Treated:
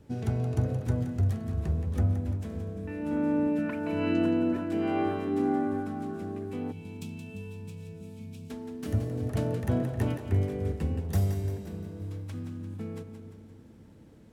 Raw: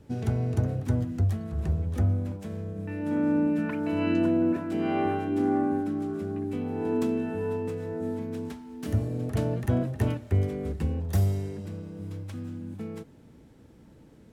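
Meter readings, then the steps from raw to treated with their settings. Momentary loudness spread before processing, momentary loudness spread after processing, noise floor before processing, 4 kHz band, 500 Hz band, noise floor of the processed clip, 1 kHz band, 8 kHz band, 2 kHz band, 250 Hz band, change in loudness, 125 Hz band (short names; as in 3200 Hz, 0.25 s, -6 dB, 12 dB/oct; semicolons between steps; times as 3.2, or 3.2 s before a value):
12 LU, 14 LU, -53 dBFS, -1.0 dB, -2.5 dB, -52 dBFS, -2.5 dB, n/a, -1.5 dB, -2.5 dB, -2.0 dB, -1.5 dB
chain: split-band echo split 350 Hz, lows 0.287 s, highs 0.173 s, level -9 dB; spectral gain 6.72–8.5, 230–2200 Hz -18 dB; gain -2 dB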